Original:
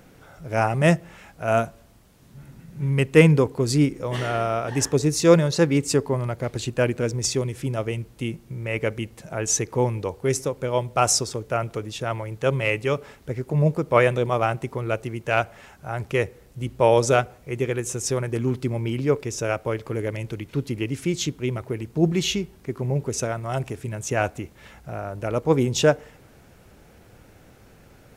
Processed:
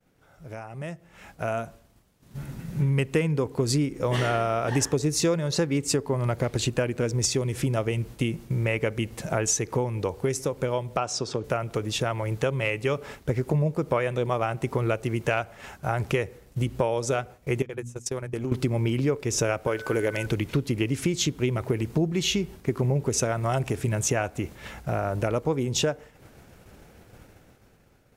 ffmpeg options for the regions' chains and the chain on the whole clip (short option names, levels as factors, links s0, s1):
-filter_complex "[0:a]asettb=1/sr,asplit=3[s0][s1][s2];[s0]atrim=end=10.974[s3];[s1]atrim=start=10.97:end=11.44,asetpts=PTS-STARTPTS,afade=t=in:d=0.004:c=qsin,afade=t=out:st=0.466:d=0.004:c=qsin,highpass=120,lowpass=4700,equalizer=f=2000:t=o:w=0.25:g=-6.5[s4];[s2]atrim=start=11.436[s5];[s3][s4]acrossfade=d=0.004:c1=hsin:c2=qsin[s6];[s6][s5]acrossfade=d=0.004:c1=qsin:c2=hsin,asettb=1/sr,asplit=3[s7][s8][s9];[s7]atrim=end=17.624[s10];[s8]atrim=start=17.62:end=18.52,asetpts=PTS-STARTPTS,afade=t=in:d=0.004:c=qsin,afade=t=out:st=0.896:d=0.004:c=qsin,agate=range=0.0501:threshold=0.0501:ratio=16:release=100:detection=peak,bandreject=f=60:t=h:w=6,bandreject=f=120:t=h:w=6,bandreject=f=180:t=h:w=6,bandreject=f=240:t=h:w=6,bandreject=f=300:t=h:w=6,acompressor=threshold=0.02:ratio=10:attack=3.2:release=140:knee=1:detection=peak[s11];[s9]atrim=start=18.516[s12];[s10][s11]acrossfade=d=0.004:c1=hsin:c2=qsin[s13];[s13][s12]acrossfade=d=0.004:c1=qsin:c2=hsin,asettb=1/sr,asplit=3[s14][s15][s16];[s14]atrim=end=19.674[s17];[s15]atrim=start=19.67:end=20.26,asetpts=PTS-STARTPTS,afade=t=in:d=0.004:c=qsin,afade=t=out:st=0.586:d=0.004:c=qsin,bass=f=250:g=-9,treble=f=4000:g=2,aeval=exprs='val(0)+0.00708*sin(2*PI*1500*n/s)':c=same[s18];[s16]atrim=start=20.256[s19];[s17][s18]acrossfade=d=0.004:c1=hsin:c2=qsin[s20];[s20][s19]acrossfade=d=0.004:c1=qsin:c2=hsin,acompressor=threshold=0.0355:ratio=16,agate=range=0.0224:threshold=0.00631:ratio=3:detection=peak,dynaudnorm=f=320:g=9:m=6.31,volume=0.447"